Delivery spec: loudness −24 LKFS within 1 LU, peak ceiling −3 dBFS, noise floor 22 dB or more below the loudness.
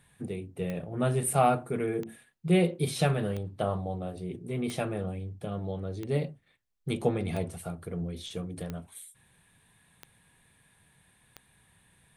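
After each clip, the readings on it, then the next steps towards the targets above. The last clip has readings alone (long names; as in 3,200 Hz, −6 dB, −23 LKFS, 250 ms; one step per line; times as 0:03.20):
number of clicks 9; integrated loudness −31.5 LKFS; sample peak −11.0 dBFS; target loudness −24.0 LKFS
→ click removal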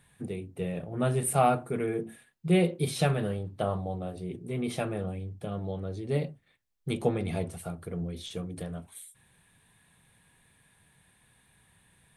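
number of clicks 0; integrated loudness −31.5 LKFS; sample peak −11.0 dBFS; target loudness −24.0 LKFS
→ level +7.5 dB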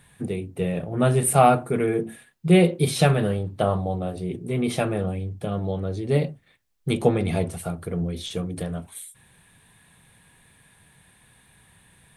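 integrated loudness −24.0 LKFS; sample peak −3.5 dBFS; background noise floor −59 dBFS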